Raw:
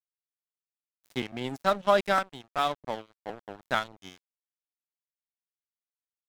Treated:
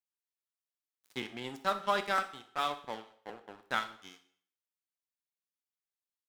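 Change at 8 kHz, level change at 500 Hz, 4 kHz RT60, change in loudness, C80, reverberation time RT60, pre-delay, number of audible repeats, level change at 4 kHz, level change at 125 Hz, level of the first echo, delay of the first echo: -3.5 dB, -10.0 dB, 0.55 s, -6.0 dB, 17.0 dB, 0.60 s, 6 ms, 1, -3.5 dB, -10.0 dB, -16.5 dB, 62 ms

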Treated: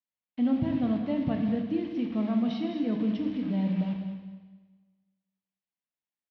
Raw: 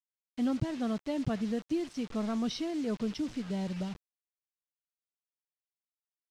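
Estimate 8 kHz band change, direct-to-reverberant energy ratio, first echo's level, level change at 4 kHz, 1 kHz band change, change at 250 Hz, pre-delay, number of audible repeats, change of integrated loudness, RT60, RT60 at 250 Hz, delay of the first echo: under -15 dB, 3.0 dB, -11.5 dB, -2.5 dB, +1.5 dB, +5.5 dB, 19 ms, 2, +5.0 dB, 1.4 s, 1.3 s, 208 ms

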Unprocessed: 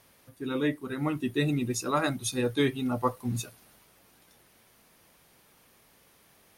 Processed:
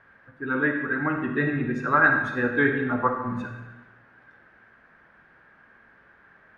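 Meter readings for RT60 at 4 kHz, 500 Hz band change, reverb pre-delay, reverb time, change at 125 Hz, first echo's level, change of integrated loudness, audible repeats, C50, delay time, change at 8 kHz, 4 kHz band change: 0.85 s, +2.5 dB, 37 ms, 1.1 s, +0.5 dB, no echo, +6.0 dB, no echo, 4.5 dB, no echo, under -25 dB, -11.0 dB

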